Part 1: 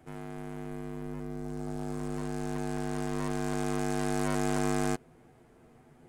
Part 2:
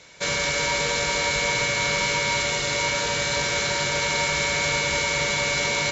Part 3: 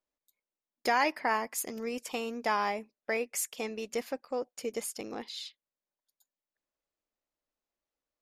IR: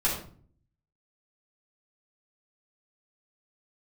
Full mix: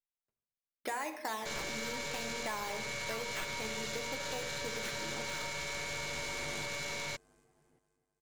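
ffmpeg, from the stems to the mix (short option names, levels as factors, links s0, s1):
-filter_complex "[0:a]bass=f=250:g=-2,treble=f=4000:g=5,adelay=1700,volume=0.188,asplit=2[s0][s1];[s1]volume=0.211[s2];[1:a]alimiter=limit=0.0841:level=0:latency=1:release=14,aeval=exprs='(tanh(28.2*val(0)+0.6)-tanh(0.6))/28.2':c=same,adelay=1250,volume=0.708[s3];[2:a]afwtdn=0.00562,acrusher=samples=9:mix=1:aa=0.000001:lfo=1:lforange=9:lforate=0.74,volume=0.473,asplit=3[s4][s5][s6];[s5]volume=0.2[s7];[s6]apad=whole_len=343485[s8];[s0][s8]sidechaincompress=threshold=0.00112:ratio=8:attack=16:release=1050[s9];[3:a]atrim=start_sample=2205[s10];[s7][s10]afir=irnorm=-1:irlink=0[s11];[s2]aecho=0:1:262|524|786|1048|1310|1572|1834|2096:1|0.52|0.27|0.141|0.0731|0.038|0.0198|0.0103[s12];[s9][s3][s4][s11][s12]amix=inputs=5:normalize=0,acompressor=threshold=0.02:ratio=6"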